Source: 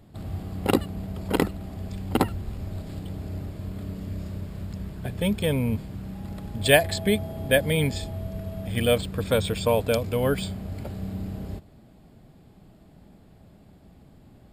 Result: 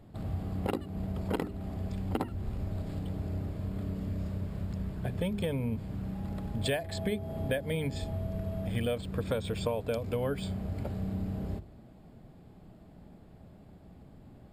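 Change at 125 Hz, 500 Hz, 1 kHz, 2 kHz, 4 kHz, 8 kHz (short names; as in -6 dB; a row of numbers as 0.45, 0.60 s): -4.5, -9.0, -9.5, -13.0, -12.0, -14.0 dB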